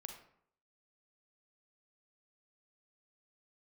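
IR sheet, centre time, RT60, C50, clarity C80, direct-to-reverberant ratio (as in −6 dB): 23 ms, 0.65 s, 6.0 dB, 9.5 dB, 4.0 dB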